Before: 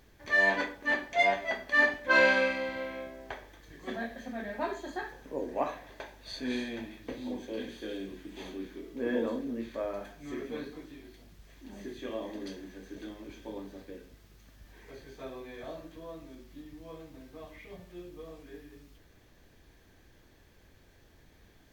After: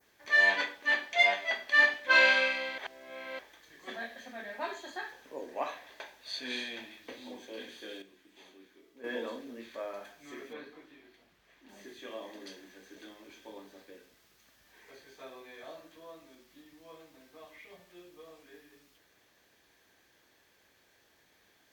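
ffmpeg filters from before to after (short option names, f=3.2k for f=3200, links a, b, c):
-filter_complex "[0:a]asettb=1/sr,asplit=3[a][b][c];[a]atrim=end=10.534[d];[b]atrim=start=10.53:end=11.69,asetpts=PTS-STARTPTS,afade=t=in:d=0.004:c=qsin,afade=t=out:st=1.156:d=0.004:c=qsin,bass=f=250:g=-1,treble=f=4k:g=-11[e];[c]atrim=start=11.686[f];[d][e]acrossfade=d=0.004:c1=hsin:c2=qsin[g];[g][f]acrossfade=d=0.004:c1=qsin:c2=hsin,asplit=5[h][i][j][k][l];[h]atrim=end=2.782[m];[i]atrim=start=2.778:end=3.392,asetpts=PTS-STARTPTS,areverse[n];[j]atrim=start=3.388:end=8.022[o];[k]atrim=start=8.018:end=9.042,asetpts=PTS-STARTPTS,volume=-9dB[p];[l]atrim=start=9.038[q];[m][n]acrossfade=d=0.004:c1=hsin:c2=hsin[r];[r][o]acrossfade=d=0.004:c1=hsin:c2=hsin[s];[s][p]acrossfade=d=0.004:c1=hsin:c2=hsin[t];[t][q]acrossfade=d=0.004:c1=hsin:c2=hsin,highpass=f=840:p=1,adynamicequalizer=threshold=0.00398:dfrequency=3300:dqfactor=1:tfrequency=3300:tqfactor=1:attack=5:release=100:ratio=0.375:range=3.5:mode=boostabove:tftype=bell"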